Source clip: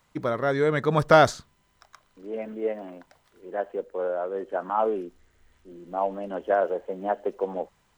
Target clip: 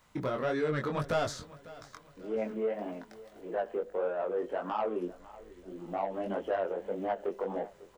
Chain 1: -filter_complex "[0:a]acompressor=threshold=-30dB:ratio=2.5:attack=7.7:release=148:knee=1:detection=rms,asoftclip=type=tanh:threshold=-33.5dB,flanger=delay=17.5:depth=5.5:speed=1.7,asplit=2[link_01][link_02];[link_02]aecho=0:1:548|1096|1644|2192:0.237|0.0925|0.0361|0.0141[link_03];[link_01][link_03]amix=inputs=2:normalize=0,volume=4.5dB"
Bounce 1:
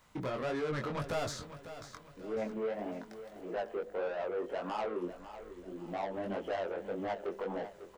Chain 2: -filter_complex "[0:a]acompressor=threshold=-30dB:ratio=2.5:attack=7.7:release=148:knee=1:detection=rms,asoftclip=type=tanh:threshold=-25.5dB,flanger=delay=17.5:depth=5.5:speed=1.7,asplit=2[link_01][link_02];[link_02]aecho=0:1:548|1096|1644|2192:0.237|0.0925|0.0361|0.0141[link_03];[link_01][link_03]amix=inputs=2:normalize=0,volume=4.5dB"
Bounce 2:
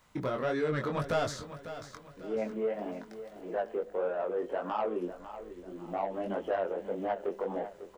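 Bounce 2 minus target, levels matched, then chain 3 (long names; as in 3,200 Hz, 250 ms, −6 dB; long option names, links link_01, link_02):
echo-to-direct +6.5 dB
-filter_complex "[0:a]acompressor=threshold=-30dB:ratio=2.5:attack=7.7:release=148:knee=1:detection=rms,asoftclip=type=tanh:threshold=-25.5dB,flanger=delay=17.5:depth=5.5:speed=1.7,asplit=2[link_01][link_02];[link_02]aecho=0:1:548|1096|1644:0.112|0.0438|0.0171[link_03];[link_01][link_03]amix=inputs=2:normalize=0,volume=4.5dB"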